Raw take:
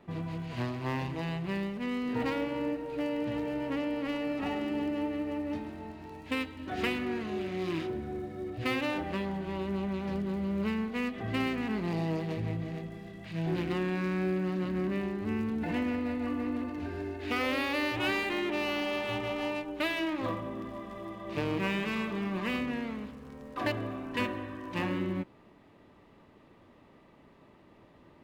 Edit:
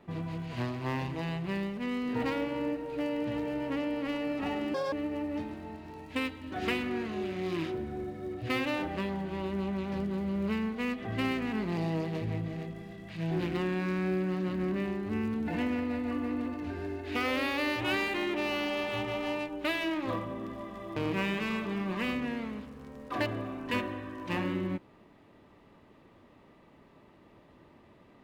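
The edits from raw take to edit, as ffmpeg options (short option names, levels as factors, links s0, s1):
-filter_complex "[0:a]asplit=4[s0][s1][s2][s3];[s0]atrim=end=4.744[s4];[s1]atrim=start=4.74:end=5.08,asetpts=PTS-STARTPTS,asetrate=81585,aresample=44100[s5];[s2]atrim=start=5.076:end=21.122[s6];[s3]atrim=start=21.418[s7];[s4][s5]acrossfade=d=0.004:c1=hsin:c2=hsin[s8];[s8][s6]acrossfade=d=0.004:c1=hsin:c2=hsin[s9];[s9][s7]acrossfade=d=0.004:c1=hsin:c2=hsin"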